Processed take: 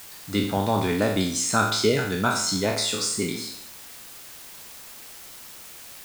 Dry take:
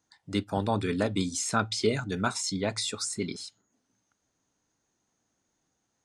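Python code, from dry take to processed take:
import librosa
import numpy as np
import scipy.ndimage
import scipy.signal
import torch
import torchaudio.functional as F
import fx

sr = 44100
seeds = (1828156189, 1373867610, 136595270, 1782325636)

p1 = fx.spec_trails(x, sr, decay_s=0.66)
p2 = fx.quant_dither(p1, sr, seeds[0], bits=6, dither='triangular')
y = p1 + F.gain(torch.from_numpy(p2), -7.0).numpy()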